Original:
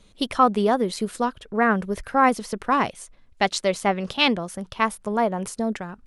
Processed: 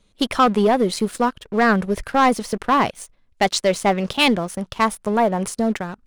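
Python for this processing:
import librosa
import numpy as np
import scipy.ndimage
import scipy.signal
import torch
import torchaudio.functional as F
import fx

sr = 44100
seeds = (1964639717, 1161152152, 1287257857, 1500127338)

y = fx.leveller(x, sr, passes=2)
y = y * librosa.db_to_amplitude(-2.0)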